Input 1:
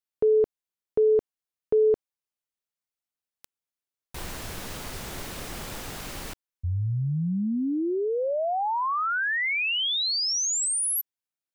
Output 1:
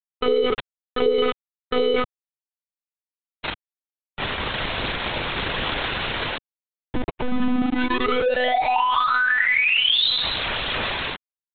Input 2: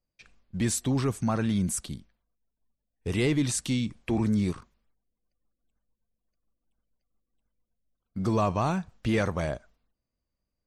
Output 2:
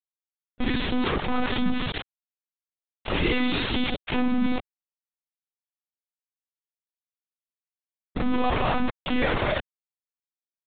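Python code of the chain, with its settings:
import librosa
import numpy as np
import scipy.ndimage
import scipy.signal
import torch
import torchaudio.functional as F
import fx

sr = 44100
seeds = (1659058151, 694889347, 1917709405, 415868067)

y = fx.recorder_agc(x, sr, target_db=-24.0, rise_db_per_s=7.1, max_gain_db=30)
y = scipy.signal.sosfilt(scipy.signal.butter(2, 110.0, 'highpass', fs=sr, output='sos'), y)
y = fx.high_shelf(y, sr, hz=2300.0, db=5.0)
y = fx.chorus_voices(y, sr, voices=4, hz=0.99, base_ms=29, depth_ms=3.0, mix_pct=30)
y = y + 10.0 ** (-15.5 / 20.0) * np.pad(y, (int(191 * sr / 1000.0), 0))[:len(y)]
y = fx.rev_schroeder(y, sr, rt60_s=0.31, comb_ms=33, drr_db=-8.0)
y = np.where(np.abs(y) >= 10.0 ** (-21.0 / 20.0), y, 0.0)
y = fx.lpc_monotone(y, sr, seeds[0], pitch_hz=250.0, order=16)
y = fx.env_flatten(y, sr, amount_pct=70)
y = y * librosa.db_to_amplitude(-7.0)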